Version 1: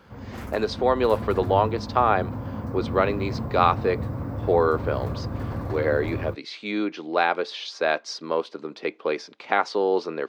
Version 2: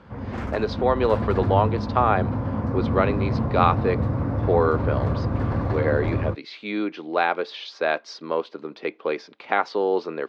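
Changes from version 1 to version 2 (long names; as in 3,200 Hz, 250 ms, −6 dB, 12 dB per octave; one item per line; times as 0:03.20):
background +6.0 dB
master: add low-pass filter 4,100 Hz 12 dB per octave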